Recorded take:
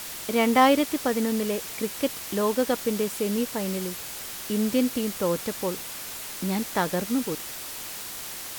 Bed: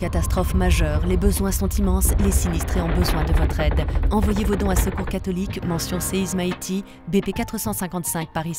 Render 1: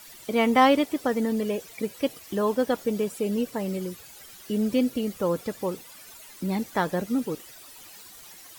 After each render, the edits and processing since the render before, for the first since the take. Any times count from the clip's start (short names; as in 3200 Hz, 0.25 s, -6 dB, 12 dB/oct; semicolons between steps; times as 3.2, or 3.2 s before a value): denoiser 14 dB, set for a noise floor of -37 dBFS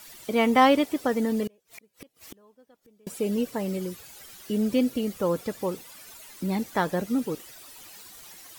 1.47–3.07 flipped gate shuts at -29 dBFS, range -33 dB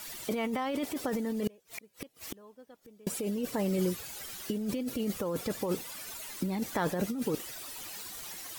limiter -19 dBFS, peak gain reduction 11.5 dB; negative-ratio compressor -31 dBFS, ratio -1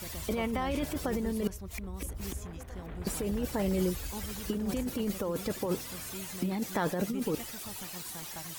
add bed -21 dB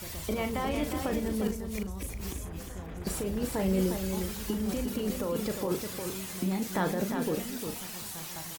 doubler 37 ms -8 dB; echo 0.355 s -6.5 dB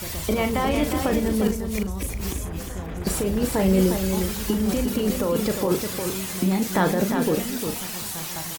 gain +8.5 dB